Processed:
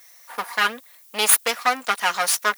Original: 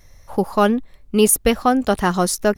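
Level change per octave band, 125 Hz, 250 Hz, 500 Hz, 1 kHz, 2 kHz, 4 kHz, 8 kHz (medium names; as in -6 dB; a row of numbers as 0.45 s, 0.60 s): under -20 dB, -22.0 dB, -13.0 dB, -2.5 dB, +5.0 dB, +4.0 dB, +0.5 dB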